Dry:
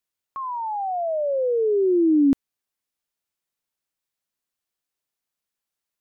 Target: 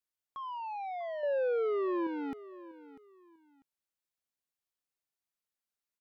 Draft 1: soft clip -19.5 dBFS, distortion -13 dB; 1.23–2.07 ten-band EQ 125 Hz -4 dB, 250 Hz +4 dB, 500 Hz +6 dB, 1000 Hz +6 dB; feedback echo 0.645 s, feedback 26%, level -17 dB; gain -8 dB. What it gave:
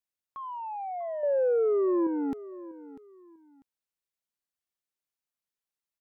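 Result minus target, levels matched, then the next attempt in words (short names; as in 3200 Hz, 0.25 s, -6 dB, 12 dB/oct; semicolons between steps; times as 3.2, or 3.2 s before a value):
soft clip: distortion -6 dB
soft clip -28 dBFS, distortion -7 dB; 1.23–2.07 ten-band EQ 125 Hz -4 dB, 250 Hz +4 dB, 500 Hz +6 dB, 1000 Hz +6 dB; feedback echo 0.645 s, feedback 26%, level -17 dB; gain -8 dB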